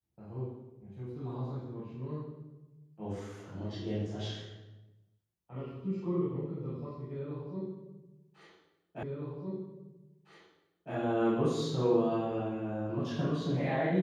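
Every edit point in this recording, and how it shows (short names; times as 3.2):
9.03 repeat of the last 1.91 s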